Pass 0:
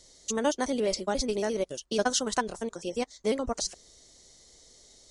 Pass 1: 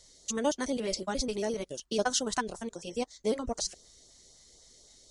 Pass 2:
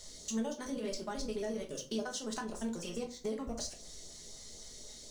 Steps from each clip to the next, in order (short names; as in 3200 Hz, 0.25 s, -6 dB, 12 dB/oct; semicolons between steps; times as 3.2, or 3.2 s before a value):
LFO notch saw up 3.9 Hz 240–2800 Hz; gain -1.5 dB
G.711 law mismatch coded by mu; compressor, threshold -37 dBFS, peak gain reduction 14.5 dB; shoebox room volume 260 m³, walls furnished, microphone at 1.4 m; gain -2 dB